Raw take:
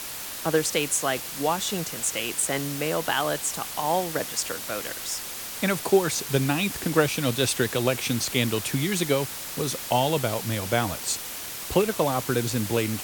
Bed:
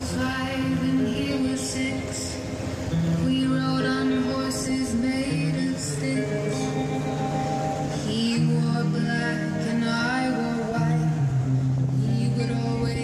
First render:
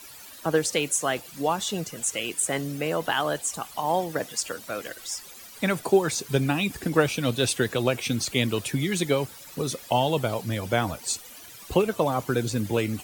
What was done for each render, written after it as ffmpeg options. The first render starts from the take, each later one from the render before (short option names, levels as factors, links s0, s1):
-af "afftdn=nr=14:nf=-36"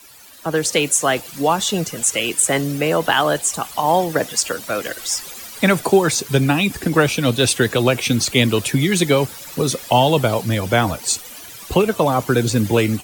-filter_complex "[0:a]acrossover=split=300|720|2900[s0][s1][s2][s3];[s1]alimiter=limit=0.0841:level=0:latency=1[s4];[s0][s4][s2][s3]amix=inputs=4:normalize=0,dynaudnorm=f=370:g=3:m=3.76"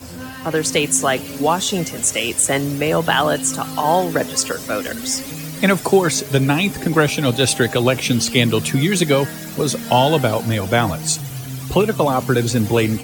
-filter_complex "[1:a]volume=0.473[s0];[0:a][s0]amix=inputs=2:normalize=0"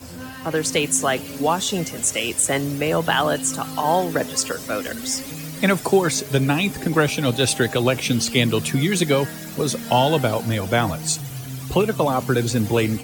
-af "volume=0.708"